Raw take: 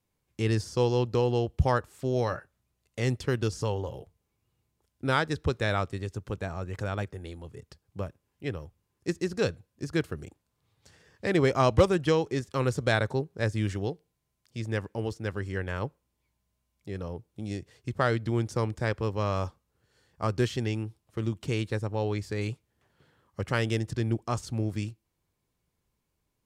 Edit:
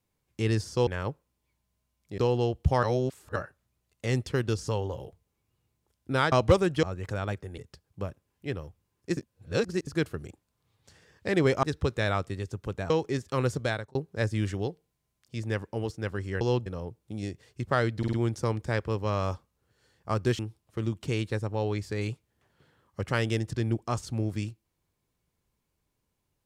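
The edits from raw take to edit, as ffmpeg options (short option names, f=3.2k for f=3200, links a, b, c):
-filter_complex "[0:a]asplit=19[a][b][c][d][e][f][g][h][i][j][k][l][m][n][o][p][q][r][s];[a]atrim=end=0.872[t];[b]atrim=start=15.628:end=16.942[u];[c]atrim=start=1.118:end=1.772[v];[d]atrim=start=1.768:end=2.302,asetpts=PTS-STARTPTS,areverse[w];[e]atrim=start=2.298:end=5.262[x];[f]atrim=start=11.608:end=12.122[y];[g]atrim=start=6.528:end=7.282[z];[h]atrim=start=7.558:end=9.152[aa];[i]atrim=start=9.148:end=9.852,asetpts=PTS-STARTPTS,areverse[ab];[j]atrim=start=9.848:end=11.612[ac];[k]atrim=start=5.258:end=6.532[ad];[l]atrim=start=12.118:end=13.17,asetpts=PTS-STARTPTS,afade=t=out:st=0.622:d=0.43[ae];[m]atrim=start=13.17:end=15.632,asetpts=PTS-STARTPTS,afade=t=in:d=0.004:c=hsin[af];[n]atrim=start=0.868:end=1.122[ag];[o]atrim=start=16.938:end=18.312[ah];[p]atrim=start=18.258:end=18.312[ai];[q]atrim=start=18.258:end=18.312[aj];[r]atrim=start=18.258:end=20.522[ak];[s]atrim=start=20.788[al];[t][u]acrossfade=d=0.004:c1=hsin:c2=hsin[am];[am][v]acrossfade=d=0.004:c1=hsin:c2=hsin[an];[an][w]acrossfade=d=0.004:c1=hsin:c2=hsin[ao];[ao][x]acrossfade=d=0.004:c1=hsin:c2=hsin[ap];[ap][y]acrossfade=d=0.004:c1=hsin:c2=hsin[aq];[aq][z]acrossfade=d=0.004:c1=hsin:c2=hsin[ar];[ar][aa]acrossfade=d=0.004:c1=hsin:c2=hsin[as];[as][ab]acrossfade=d=0.004:c1=hsin:c2=hsin[at];[at][ac]acrossfade=d=0.004:c1=hsin:c2=hsin[au];[au][ad]acrossfade=d=0.004:c1=hsin:c2=hsin[av];[ae][af]concat=n=2:v=0:a=1[aw];[av][aw]acrossfade=d=0.004:c1=hsin:c2=hsin[ax];[ax][ag]acrossfade=d=0.004:c1=hsin:c2=hsin[ay];[ay][ah]acrossfade=d=0.004:c1=hsin:c2=hsin[az];[az][ai]acrossfade=d=0.004:c1=hsin:c2=hsin[ba];[ba][aj]acrossfade=d=0.004:c1=hsin:c2=hsin[bb];[bb][ak]acrossfade=d=0.004:c1=hsin:c2=hsin[bc];[bc][al]acrossfade=d=0.004:c1=hsin:c2=hsin"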